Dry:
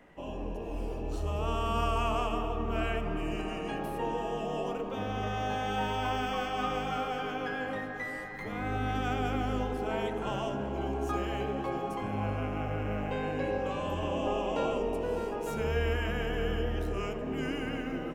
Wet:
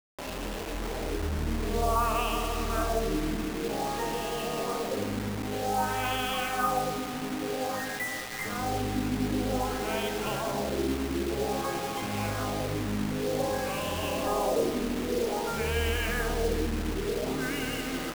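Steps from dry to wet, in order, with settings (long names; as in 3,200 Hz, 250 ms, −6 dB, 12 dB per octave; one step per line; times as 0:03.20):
auto-filter low-pass sine 0.52 Hz 260–3,300 Hz
spring reverb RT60 2.8 s, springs 53 ms, chirp 50 ms, DRR 10 dB
bit-depth reduction 6 bits, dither none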